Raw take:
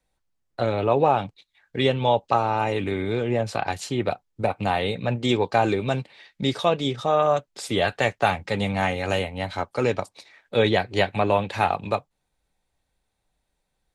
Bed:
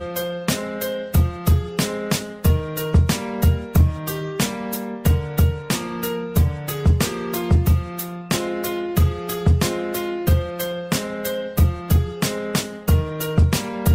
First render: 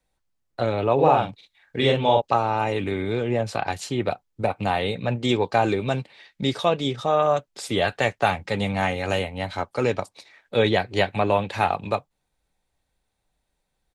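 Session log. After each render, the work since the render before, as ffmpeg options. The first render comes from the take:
-filter_complex "[0:a]asplit=3[a][b][c];[a]afade=t=out:st=0.98:d=0.02[d];[b]asplit=2[e][f];[f]adelay=44,volume=-2dB[g];[e][g]amix=inputs=2:normalize=0,afade=t=in:st=0.98:d=0.02,afade=t=out:st=2.2:d=0.02[h];[c]afade=t=in:st=2.2:d=0.02[i];[d][h][i]amix=inputs=3:normalize=0"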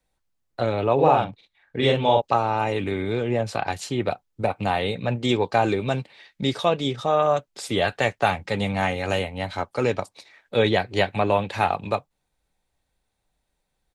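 -filter_complex "[0:a]asettb=1/sr,asplit=3[a][b][c];[a]atrim=end=1.244[d];[b]atrim=start=1.24:end=1.83,asetpts=PTS-STARTPTS,afade=t=in:d=0.004:c=qsin,afade=t=out:st=0.586:d=0.004:c=qsin,highshelf=f=3.6k:g=-11[e];[c]atrim=start=1.826[f];[d][e]acrossfade=d=0.004:c1=hsin:c2=qsin[g];[g][f]acrossfade=d=0.004:c1=qsin:c2=hsin"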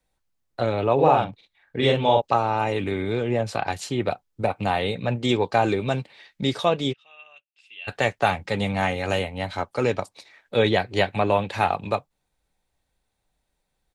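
-filter_complex "[0:a]asplit=3[a][b][c];[a]afade=t=out:st=6.92:d=0.02[d];[b]bandpass=f=2.7k:t=q:w=18,afade=t=in:st=6.92:d=0.02,afade=t=out:st=7.87:d=0.02[e];[c]afade=t=in:st=7.87:d=0.02[f];[d][e][f]amix=inputs=3:normalize=0"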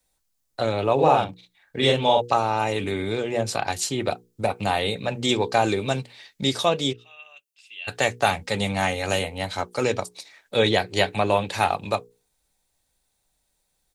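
-af "bass=f=250:g=-1,treble=f=4k:g=11,bandreject=f=60:t=h:w=6,bandreject=f=120:t=h:w=6,bandreject=f=180:t=h:w=6,bandreject=f=240:t=h:w=6,bandreject=f=300:t=h:w=6,bandreject=f=360:t=h:w=6,bandreject=f=420:t=h:w=6,bandreject=f=480:t=h:w=6"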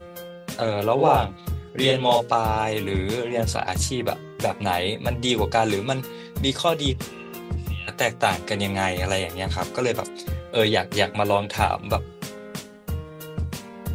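-filter_complex "[1:a]volume=-12.5dB[a];[0:a][a]amix=inputs=2:normalize=0"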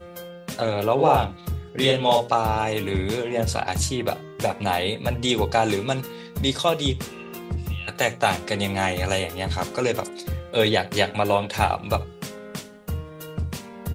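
-af "aecho=1:1:74:0.0794"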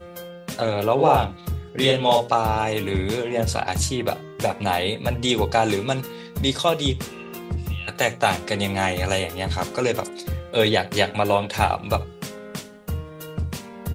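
-af "volume=1dB"

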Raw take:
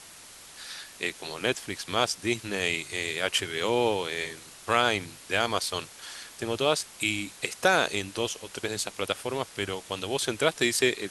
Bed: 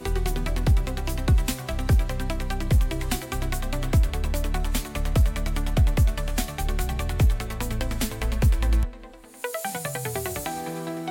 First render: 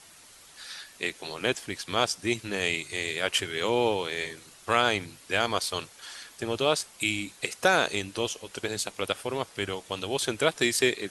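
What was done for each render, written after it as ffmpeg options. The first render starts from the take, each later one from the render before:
-af "afftdn=nr=6:nf=-49"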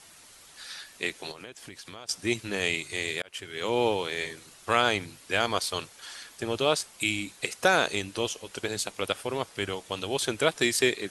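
-filter_complex "[0:a]asettb=1/sr,asplit=3[a][b][c];[a]atrim=end=1.314[d];[b]atrim=start=1.31:end=2.09,asetpts=PTS-STARTPTS,afade=t=in:d=0.004:c=qsin,afade=t=out:st=0.776:d=0.004:c=qsin,acompressor=threshold=-40dB:ratio=6:attack=3.2:release=140:knee=1:detection=peak[e];[c]atrim=start=2.086[f];[d][e]acrossfade=d=0.004:c1=hsin:c2=qsin[g];[g][f]acrossfade=d=0.004:c1=qsin:c2=hsin,asplit=2[h][i];[h]atrim=end=3.22,asetpts=PTS-STARTPTS,afade=t=out:st=3.216:d=0.004:c=hsin[j];[i]atrim=start=3.22,asetpts=PTS-STARTPTS,afade=t=in:d=0.6[k];[j][k]concat=n=2:v=0:a=1"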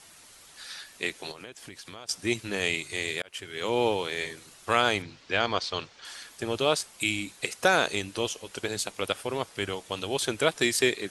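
-filter_complex "[0:a]asettb=1/sr,asplit=3[a][b][c];[a]atrim=end=5.024[d];[b]atrim=start=5.02:end=6.05,asetpts=PTS-STARTPTS,afade=t=in:d=0.004:c=qsin,afade=t=out:st=1.026:d=0.004:c=qsin,lowpass=f=5.6k:w=0.5412,lowpass=f=5.6k:w=1.3066[e];[c]atrim=start=6.046[f];[d][e]acrossfade=d=0.004:c1=hsin:c2=qsin[g];[g][f]acrossfade=d=0.004:c1=qsin:c2=hsin"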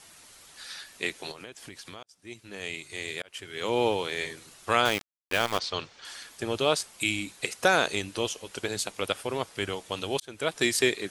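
-filter_complex "[0:a]asettb=1/sr,asplit=3[a][b][c];[a]atrim=end=4.854[d];[b]atrim=start=4.85:end=5.59,asetpts=PTS-STARTPTS,afade=t=in:d=0.004:c=qsin,afade=t=out:st=0.736:d=0.004:c=qsin,aeval=exprs='val(0)*gte(abs(val(0)),0.0398)':c=same[e];[c]atrim=start=5.586[f];[d][e]acrossfade=d=0.004:c1=hsin:c2=qsin[g];[g][f]acrossfade=d=0.004:c1=qsin:c2=hsin,asplit=3[h][i][j];[h]atrim=end=2.03,asetpts=PTS-STARTPTS,afade=t=out:st=2.026:d=0.004:c=hsin[k];[i]atrim=start=2.03:end=10.2,asetpts=PTS-STARTPTS,afade=t=in:d=1.67,afade=t=out:st=8.166:d=0.004:c=hsin[l];[j]atrim=start=10.2,asetpts=PTS-STARTPTS,afade=t=in:d=0.45[m];[k][l][m]concat=n=3:v=0:a=1"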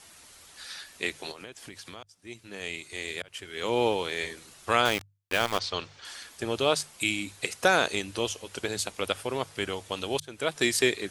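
-af "equalizer=f=77:t=o:w=0.44:g=8,bandreject=f=50:t=h:w=6,bandreject=f=100:t=h:w=6,bandreject=f=150:t=h:w=6"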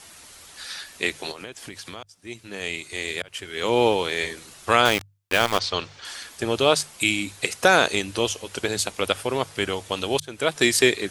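-af "volume=6dB,alimiter=limit=-2dB:level=0:latency=1"

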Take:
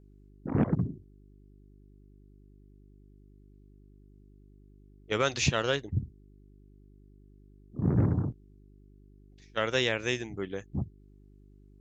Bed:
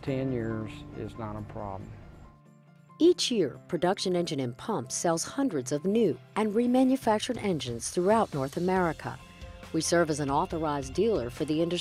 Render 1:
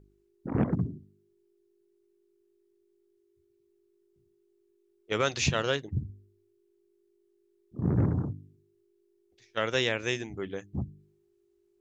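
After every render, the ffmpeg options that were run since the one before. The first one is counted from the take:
-af "bandreject=f=50:t=h:w=4,bandreject=f=100:t=h:w=4,bandreject=f=150:t=h:w=4,bandreject=f=200:t=h:w=4,bandreject=f=250:t=h:w=4,bandreject=f=300:t=h:w=4"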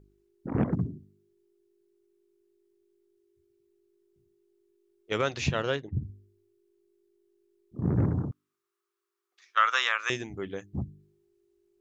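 -filter_complex "[0:a]asettb=1/sr,asplit=3[a][b][c];[a]atrim=end=5.214[d];[b]atrim=start=5.21:end=6.02,asetpts=PTS-STARTPTS,afade=t=in:d=0.004:c=qsin,afade=t=out:st=0.806:d=0.004:c=qsin,highshelf=f=4.4k:g=-11.5[e];[c]atrim=start=6.016[f];[d][e]acrossfade=d=0.004:c1=hsin:c2=qsin[g];[g][f]acrossfade=d=0.004:c1=qsin:c2=hsin,asettb=1/sr,asplit=3[h][i][j];[h]atrim=end=8.314[k];[i]atrim=start=8.31:end=10.1,asetpts=PTS-STARTPTS,afade=t=in:d=0.004:c=qsin,afade=t=out:st=1.786:d=0.004:c=qsin,highpass=f=1.2k:t=q:w=6.7[l];[j]atrim=start=10.096[m];[k][l]acrossfade=d=0.004:c1=hsin:c2=qsin[n];[n][m]acrossfade=d=0.004:c1=qsin:c2=hsin"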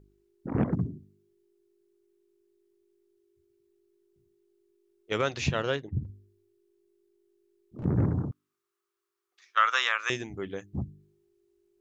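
-filter_complex "[0:a]asettb=1/sr,asplit=3[a][b][c];[a]atrim=end=6.044[d];[b]atrim=start=6.04:end=7.85,asetpts=PTS-STARTPTS,afade=t=in:d=0.004:c=qsin,afade=t=out:st=1.806:d=0.004:c=qsin,asoftclip=type=hard:threshold=-35dB[e];[c]atrim=start=7.846[f];[d][e]acrossfade=d=0.004:c1=hsin:c2=qsin[g];[g][f]acrossfade=d=0.004:c1=qsin:c2=hsin"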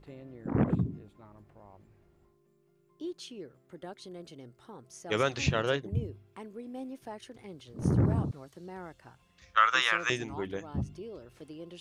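-filter_complex "[1:a]volume=-17.5dB[a];[0:a][a]amix=inputs=2:normalize=0"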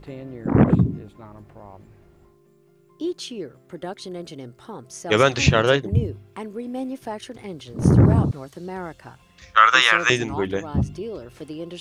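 -af "volume=11.5dB,alimiter=limit=-1dB:level=0:latency=1"

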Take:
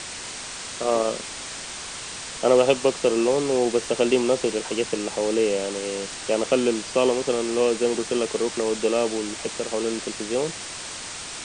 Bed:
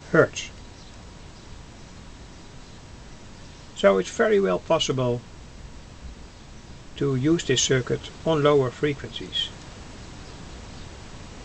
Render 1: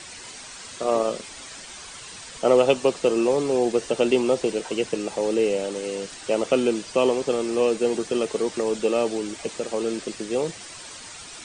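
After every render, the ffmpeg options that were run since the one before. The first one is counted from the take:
-af "afftdn=nr=9:nf=-35"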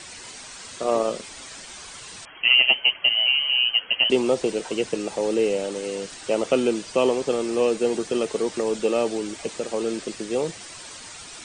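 -filter_complex "[0:a]asettb=1/sr,asplit=3[a][b][c];[a]atrim=end=2.254[d];[b]atrim=start=2.25:end=4.1,asetpts=PTS-STARTPTS,afade=t=in:d=0.004:c=qsin,afade=t=out:st=1.846:d=0.004:c=qsin,lowpass=f=2.8k:t=q:w=0.5098,lowpass=f=2.8k:t=q:w=0.6013,lowpass=f=2.8k:t=q:w=0.9,lowpass=f=2.8k:t=q:w=2.563,afreqshift=-3300[e];[c]atrim=start=4.096[f];[d][e]acrossfade=d=0.004:c1=hsin:c2=qsin[g];[g][f]acrossfade=d=0.004:c1=qsin:c2=hsin"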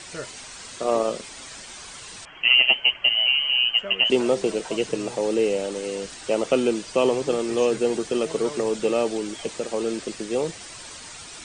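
-filter_complex "[1:a]volume=-18dB[a];[0:a][a]amix=inputs=2:normalize=0"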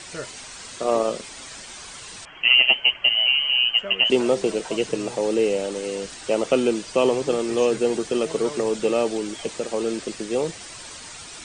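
-af "volume=1dB"

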